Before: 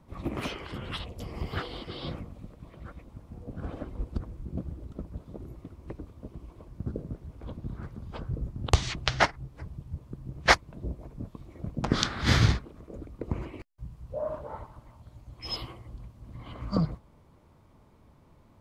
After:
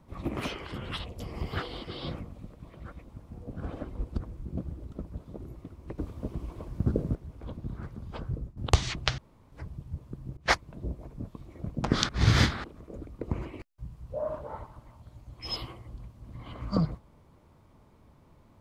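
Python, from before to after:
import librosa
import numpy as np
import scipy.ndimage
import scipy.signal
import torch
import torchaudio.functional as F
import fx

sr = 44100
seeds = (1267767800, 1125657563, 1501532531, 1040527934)

y = fx.edit(x, sr, fx.clip_gain(start_s=5.98, length_s=1.17, db=7.5),
    fx.fade_out_to(start_s=8.32, length_s=0.25, floor_db=-16.0),
    fx.room_tone_fill(start_s=9.18, length_s=0.34),
    fx.fade_in_from(start_s=10.37, length_s=0.26, floor_db=-21.0),
    fx.reverse_span(start_s=12.09, length_s=0.55), tone=tone)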